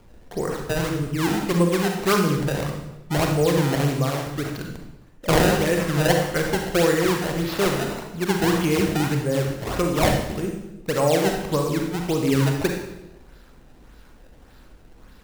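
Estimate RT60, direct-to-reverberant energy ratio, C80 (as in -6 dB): 0.95 s, 2.0 dB, 7.0 dB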